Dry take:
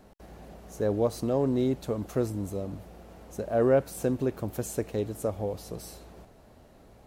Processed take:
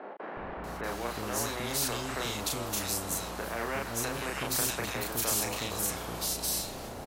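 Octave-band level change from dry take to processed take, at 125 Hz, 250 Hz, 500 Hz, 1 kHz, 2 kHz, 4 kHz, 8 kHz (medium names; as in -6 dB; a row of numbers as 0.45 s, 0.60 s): -6.5 dB, -8.0 dB, -9.0 dB, +4.0 dB, +10.0 dB, +15.0 dB, +13.5 dB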